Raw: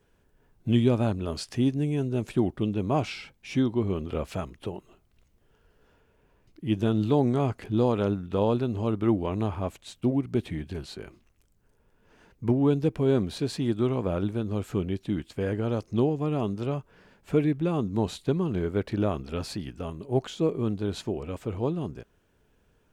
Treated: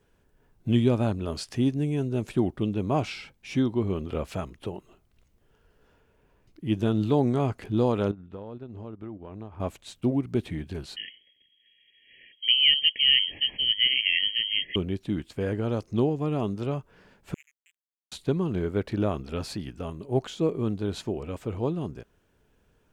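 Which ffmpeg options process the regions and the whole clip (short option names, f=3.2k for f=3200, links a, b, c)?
-filter_complex "[0:a]asettb=1/sr,asplit=3[a][b][c];[a]atrim=end=8.114[d];[b]atrim=start=8.11:end=9.6,asetpts=PTS-STARTPTS,afade=t=in:d=0.004:c=qsin,afade=t=out:st=1.486:d=0.004:c=qsin,lowpass=f=2k:p=1,agate=range=-9dB:threshold=-27dB:ratio=16:release=100:detection=peak,acompressor=threshold=-35dB:ratio=10:attack=3.2:release=140:knee=1:detection=peak[e];[c]atrim=start=9.596[f];[d][e]acrossfade=d=0.004:c1=hsin:c2=qsin[g];[g][f]acrossfade=d=0.004:c1=qsin:c2=hsin,asettb=1/sr,asplit=3[h][i][j];[h]atrim=end=10.964[k];[i]atrim=start=10.96:end=14.76,asetpts=PTS-STARTPTS,afade=t=in:d=0.004:c=qsin,afade=t=out:st=3.796:d=0.004:c=qsin,asuperstop=centerf=2100:order=12:qfactor=1.4,equalizer=f=2.2k:t=o:w=2.5:g=14.5,lowpass=f=2.8k:t=q:w=0.5098,lowpass=f=2.8k:t=q:w=0.6013,lowpass=f=2.8k:t=q:w=0.9,lowpass=f=2.8k:t=q:w=2.563,afreqshift=-3300[l];[j]atrim=start=14.756[m];[k][l]acrossfade=d=0.004:c1=hsin:c2=qsin[n];[n][m]acrossfade=d=0.004:c1=qsin:c2=hsin,asettb=1/sr,asplit=3[o][p][q];[o]atrim=end=17.344[r];[p]atrim=start=17.34:end=18.12,asetpts=PTS-STARTPTS,afade=t=in:d=0.004:c=qsin,afade=t=out:st=0.776:d=0.004:c=qsin,asuperpass=centerf=2400:order=20:qfactor=2.6,aeval=exprs='sgn(val(0))*max(abs(val(0))-0.00668,0)':c=same[s];[q]atrim=start=18.116[t];[r][s]acrossfade=d=0.004:c1=hsin:c2=qsin[u];[u][t]acrossfade=d=0.004:c1=qsin:c2=hsin"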